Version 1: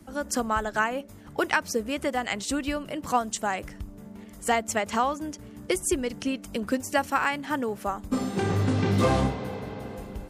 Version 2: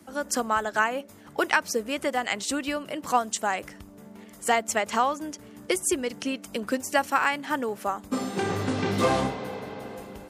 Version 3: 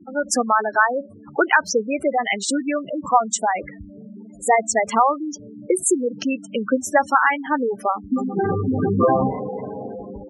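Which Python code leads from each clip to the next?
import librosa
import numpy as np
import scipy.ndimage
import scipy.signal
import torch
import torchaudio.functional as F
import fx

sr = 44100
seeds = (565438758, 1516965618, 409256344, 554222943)

y1 = fx.highpass(x, sr, hz=310.0, slope=6)
y1 = y1 * librosa.db_to_amplitude(2.0)
y2 = fx.spec_gate(y1, sr, threshold_db=-10, keep='strong')
y2 = y2 * librosa.db_to_amplitude(8.0)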